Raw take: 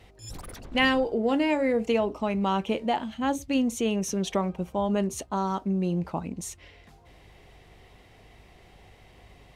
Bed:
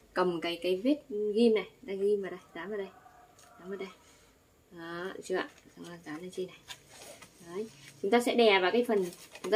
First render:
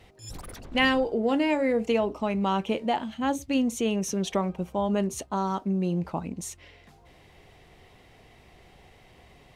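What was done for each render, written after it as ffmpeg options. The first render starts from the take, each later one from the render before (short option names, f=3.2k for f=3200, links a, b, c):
-af "bandreject=f=50:t=h:w=4,bandreject=f=100:t=h:w=4"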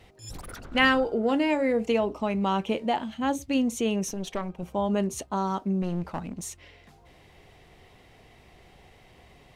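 -filter_complex "[0:a]asettb=1/sr,asplit=3[a][b][c];[a]atrim=end=0.494[d];[b]atrim=start=0.49:end=1.31,asetpts=PTS-STARTPTS,afade=t=in:d=0.004:c=qsin,afade=t=out:st=0.816:d=0.004:c=qsin,equalizer=f=1.4k:w=4:g=12[e];[c]atrim=start=1.306[f];[d][e]acrossfade=d=0.004:c1=hsin:c2=qsin[g];[g][f]acrossfade=d=0.004:c1=qsin:c2=hsin,asettb=1/sr,asplit=3[h][i][j];[h]atrim=end=4.094[k];[i]atrim=start=4.09:end=4.63,asetpts=PTS-STARTPTS,afade=t=in:d=0.004:c=qsin,afade=t=out:st=0.536:d=0.004:c=qsin,aeval=exprs='(tanh(12.6*val(0)+0.8)-tanh(0.8))/12.6':c=same[l];[j]atrim=start=4.626[m];[k][l]acrossfade=d=0.004:c1=hsin:c2=qsin[n];[n][m]acrossfade=d=0.004:c1=qsin:c2=hsin,asettb=1/sr,asplit=3[o][p][q];[o]atrim=end=5.824[r];[p]atrim=start=5.82:end=6.46,asetpts=PTS-STARTPTS,afade=t=in:d=0.004:c=qsin,afade=t=out:st=0.636:d=0.004:c=qsin,aeval=exprs='clip(val(0),-1,0.0237)':c=same[s];[q]atrim=start=6.456[t];[r][s]acrossfade=d=0.004:c1=hsin:c2=qsin[u];[u][t]acrossfade=d=0.004:c1=qsin:c2=hsin"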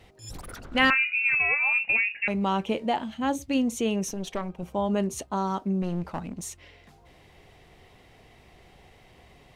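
-filter_complex "[0:a]asettb=1/sr,asplit=3[a][b][c];[a]atrim=end=0.904[d];[b]atrim=start=0.9:end=2.28,asetpts=PTS-STARTPTS,afade=t=in:d=0.004:c=qsin,afade=t=out:st=1.376:d=0.004:c=qsin,lowpass=f=2.5k:t=q:w=0.5098,lowpass=f=2.5k:t=q:w=0.6013,lowpass=f=2.5k:t=q:w=0.9,lowpass=f=2.5k:t=q:w=2.563,afreqshift=-2900[e];[c]atrim=start=2.276[f];[d][e]acrossfade=d=0.004:c1=hsin:c2=qsin[g];[g][f]acrossfade=d=0.004:c1=qsin:c2=hsin"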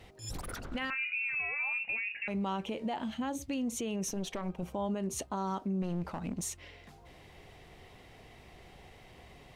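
-af "acompressor=threshold=-28dB:ratio=6,alimiter=level_in=3dB:limit=-24dB:level=0:latency=1:release=60,volume=-3dB"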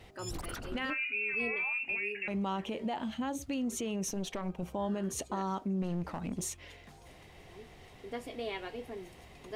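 -filter_complex "[1:a]volume=-15dB[a];[0:a][a]amix=inputs=2:normalize=0"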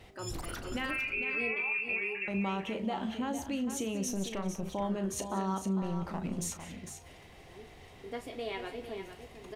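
-filter_complex "[0:a]asplit=2[a][b];[b]adelay=36,volume=-11dB[c];[a][c]amix=inputs=2:normalize=0,aecho=1:1:183|452:0.133|0.355"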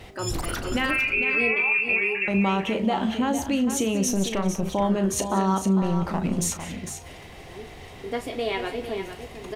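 -af "volume=10.5dB"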